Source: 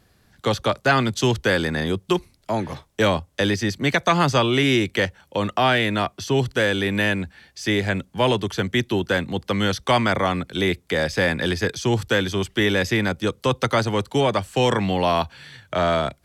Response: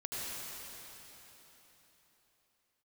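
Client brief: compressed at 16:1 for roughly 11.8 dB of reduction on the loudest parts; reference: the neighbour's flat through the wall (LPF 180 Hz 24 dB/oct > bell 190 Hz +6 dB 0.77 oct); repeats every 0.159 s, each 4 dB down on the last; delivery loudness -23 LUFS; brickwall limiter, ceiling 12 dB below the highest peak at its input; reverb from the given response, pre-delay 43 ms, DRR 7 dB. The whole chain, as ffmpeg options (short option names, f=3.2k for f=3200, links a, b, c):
-filter_complex "[0:a]acompressor=threshold=-26dB:ratio=16,alimiter=level_in=0.5dB:limit=-24dB:level=0:latency=1,volume=-0.5dB,aecho=1:1:159|318|477|636|795|954|1113|1272|1431:0.631|0.398|0.25|0.158|0.0994|0.0626|0.0394|0.0249|0.0157,asplit=2[a][b];[1:a]atrim=start_sample=2205,adelay=43[c];[b][c]afir=irnorm=-1:irlink=0,volume=-10dB[d];[a][d]amix=inputs=2:normalize=0,lowpass=f=180:w=0.5412,lowpass=f=180:w=1.3066,equalizer=f=190:t=o:w=0.77:g=6,volume=13.5dB"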